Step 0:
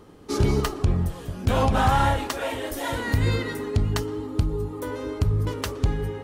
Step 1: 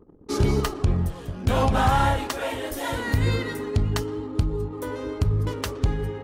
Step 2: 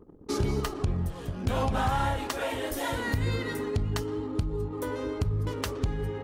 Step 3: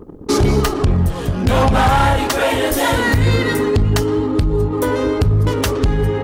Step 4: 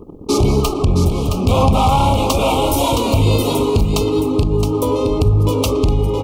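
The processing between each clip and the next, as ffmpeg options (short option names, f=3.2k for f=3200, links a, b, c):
-af "anlmdn=0.0398"
-af "acompressor=threshold=-29dB:ratio=2"
-af "aeval=exprs='0.211*sin(PI/2*2.24*val(0)/0.211)':c=same,volume=5dB"
-filter_complex "[0:a]asuperstop=centerf=1700:order=8:qfactor=1.6,asplit=2[a][b];[b]aecho=0:1:668:0.473[c];[a][c]amix=inputs=2:normalize=0"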